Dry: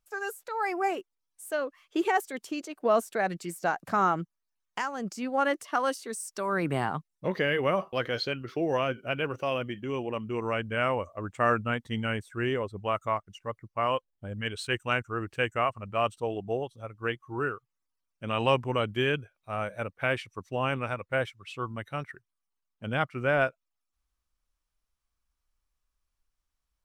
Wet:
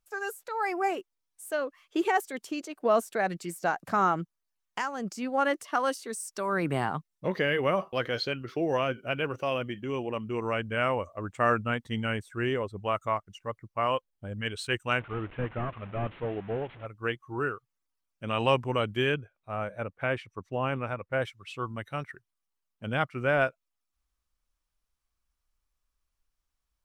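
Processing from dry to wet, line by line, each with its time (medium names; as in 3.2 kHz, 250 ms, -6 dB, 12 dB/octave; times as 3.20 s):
14.99–16.86 s: one-bit delta coder 16 kbps, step -42 dBFS
19.14–21.22 s: treble shelf 3.1 kHz -11.5 dB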